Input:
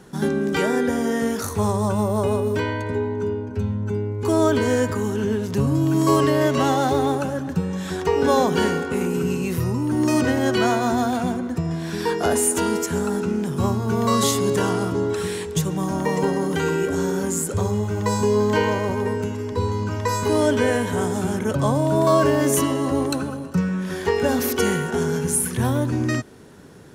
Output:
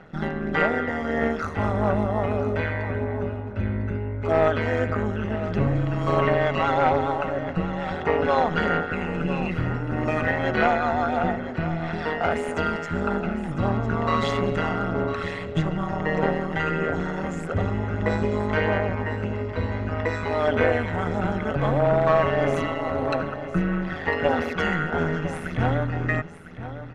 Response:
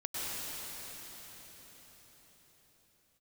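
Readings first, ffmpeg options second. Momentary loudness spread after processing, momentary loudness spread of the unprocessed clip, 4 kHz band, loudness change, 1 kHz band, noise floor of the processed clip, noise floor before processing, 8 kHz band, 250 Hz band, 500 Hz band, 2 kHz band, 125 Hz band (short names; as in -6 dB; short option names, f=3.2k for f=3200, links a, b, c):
7 LU, 6 LU, -6.5 dB, -3.0 dB, -0.5 dB, -33 dBFS, -31 dBFS, under -20 dB, -5.5 dB, -3.0 dB, +2.0 dB, -2.0 dB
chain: -filter_complex "[0:a]lowshelf=f=83:g=-11.5,aecho=1:1:1.5:0.73,aphaser=in_gain=1:out_gain=1:delay=1.1:decay=0.33:speed=1.6:type=sinusoidal,tremolo=f=160:d=0.788,aeval=exprs='clip(val(0),-1,0.15)':c=same,lowpass=f=2.2k:t=q:w=1.5,asplit=2[a][b];[b]aecho=0:1:1003:0.237[c];[a][c]amix=inputs=2:normalize=0"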